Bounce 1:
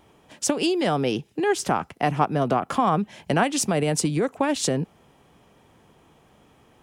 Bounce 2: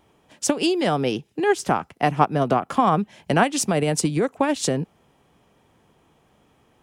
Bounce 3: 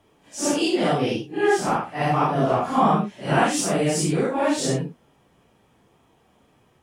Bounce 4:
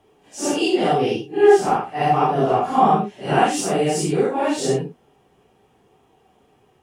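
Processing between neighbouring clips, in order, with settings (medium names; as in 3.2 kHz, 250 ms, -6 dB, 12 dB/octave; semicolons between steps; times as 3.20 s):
upward expansion 1.5:1, over -32 dBFS; trim +4 dB
phase randomisation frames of 200 ms
small resonant body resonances 410/760/2800 Hz, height 10 dB, ringing for 45 ms; trim -1 dB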